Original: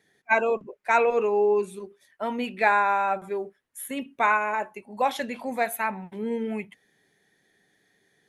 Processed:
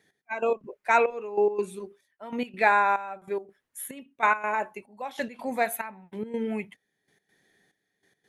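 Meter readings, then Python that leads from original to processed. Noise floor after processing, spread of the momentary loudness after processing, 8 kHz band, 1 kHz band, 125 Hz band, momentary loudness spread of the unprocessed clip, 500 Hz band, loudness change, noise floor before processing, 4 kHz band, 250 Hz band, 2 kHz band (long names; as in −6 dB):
−80 dBFS, 16 LU, −0.5 dB, −2.0 dB, can't be measured, 14 LU, −3.0 dB, −2.0 dB, −69 dBFS, −4.0 dB, −2.5 dB, −2.0 dB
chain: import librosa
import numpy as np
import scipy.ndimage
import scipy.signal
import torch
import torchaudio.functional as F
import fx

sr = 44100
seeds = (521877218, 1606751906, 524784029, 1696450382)

y = fx.step_gate(x, sr, bpm=142, pattern='x...x.xxx', floor_db=-12.0, edge_ms=4.5)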